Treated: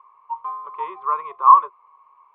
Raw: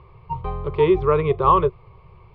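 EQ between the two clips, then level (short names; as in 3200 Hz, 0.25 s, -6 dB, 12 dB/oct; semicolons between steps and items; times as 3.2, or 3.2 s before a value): ladder band-pass 1100 Hz, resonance 80%; +4.0 dB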